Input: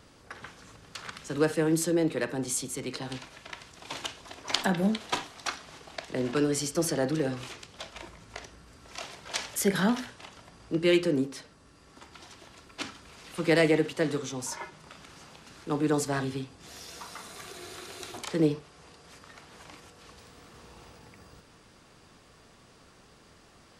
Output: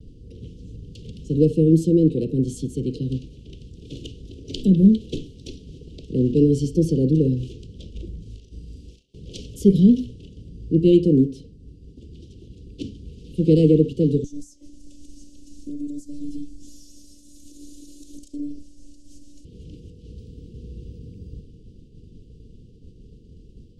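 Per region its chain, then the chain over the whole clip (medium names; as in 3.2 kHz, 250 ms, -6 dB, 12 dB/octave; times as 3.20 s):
8.22–9.14 s: tilt shelf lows -5 dB, about 750 Hz + compression, threshold -47 dBFS + doubling 38 ms -3 dB
14.24–19.45 s: resonant high shelf 4.7 kHz +12.5 dB, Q 1.5 + compression, threshold -36 dBFS + robot voice 291 Hz
whole clip: Chebyshev band-stop 470–2900 Hz, order 4; tilt EQ -4.5 dB/octave; expander -43 dBFS; trim +3 dB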